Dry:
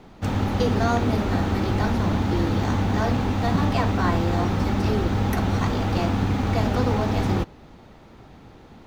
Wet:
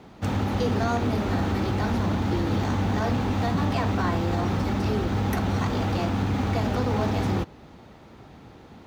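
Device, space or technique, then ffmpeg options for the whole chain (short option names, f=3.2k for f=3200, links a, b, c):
soft clipper into limiter: -af "asoftclip=type=tanh:threshold=-12.5dB,alimiter=limit=-16.5dB:level=0:latency=1:release=126,highpass=55"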